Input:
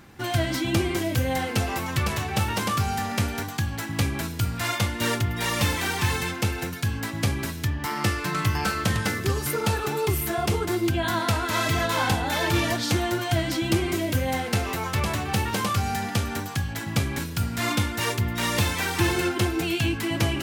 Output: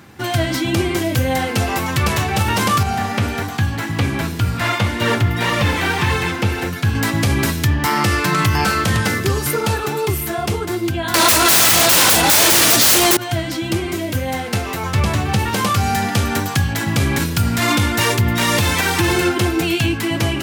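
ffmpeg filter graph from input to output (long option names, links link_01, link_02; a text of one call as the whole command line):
ffmpeg -i in.wav -filter_complex "[0:a]asettb=1/sr,asplit=3[link_01][link_02][link_03];[link_01]atrim=end=2.834[link_04];[link_02]atrim=start=2.83:end=6.95,asetpts=PTS-STARTPTS,afade=type=in:duration=0.004:curve=qsin,afade=type=out:start_time=4.116:duration=0.004:curve=qsin,acrossover=split=3800[link_05][link_06];[link_06]acompressor=threshold=-42dB:ratio=4:attack=1:release=60[link_07];[link_05][link_07]amix=inputs=2:normalize=0,flanger=delay=1.6:depth=9.5:regen=-57:speed=1.8:shape=sinusoidal[link_08];[link_03]atrim=start=6.946[link_09];[link_04][link_08]acrossfade=duration=0.004:curve1=hsin:curve2=qsin[link_10];[link_10][link_09]acrossfade=duration=0.004:curve1=qsin:curve2=hsin,asettb=1/sr,asplit=3[link_11][link_12][link_13];[link_11]atrim=end=11.144[link_14];[link_12]atrim=start=11.14:end=13.17,asetpts=PTS-STARTPTS,afade=type=in:duration=0.004:curve=qsin,afade=type=out:start_time=2.026:duration=0.004:curve=qsin,bass=frequency=250:gain=-3,treble=frequency=4000:gain=14,aecho=1:1:6:0.4,atrim=end_sample=89523,aeval=exprs='0.708*sin(PI/2*10*val(0)/0.708)':channel_layout=same[link_15];[link_13]atrim=start=13.166[link_16];[link_14][link_15]acrossfade=duration=0.004:curve1=hsin:curve2=qsin[link_17];[link_17][link_16]acrossfade=duration=0.004:curve1=qsin:curve2=hsin,asettb=1/sr,asplit=3[link_18][link_19][link_20];[link_18]atrim=end=14.834[link_21];[link_19]atrim=start=14.83:end=15.39,asetpts=PTS-STARTPTS,afade=type=in:duration=0.004:curve=qsin,afade=type=out:start_time=0.556:duration=0.004:curve=qsin,acrossover=split=9600[link_22][link_23];[link_23]acompressor=threshold=-44dB:ratio=4:attack=1:release=60[link_24];[link_22][link_24]amix=inputs=2:normalize=0,lowshelf=frequency=170:gain=7.5[link_25];[link_20]atrim=start=15.386[link_26];[link_21][link_25]acrossfade=duration=0.004:curve1=hsin:curve2=qsin[link_27];[link_27][link_26]acrossfade=duration=0.004:curve1=qsin:curve2=hsin,highpass=frequency=68:width=0.5412,highpass=frequency=68:width=1.3066,dynaudnorm=framelen=520:gausssize=9:maxgain=7dB,alimiter=limit=-13.5dB:level=0:latency=1:release=51,volume=6.5dB" out.wav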